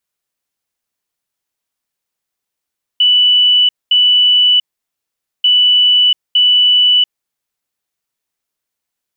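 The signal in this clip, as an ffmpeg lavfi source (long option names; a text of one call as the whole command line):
ffmpeg -f lavfi -i "aevalsrc='0.473*sin(2*PI*2970*t)*clip(min(mod(mod(t,2.44),0.91),0.69-mod(mod(t,2.44),0.91))/0.005,0,1)*lt(mod(t,2.44),1.82)':duration=4.88:sample_rate=44100" out.wav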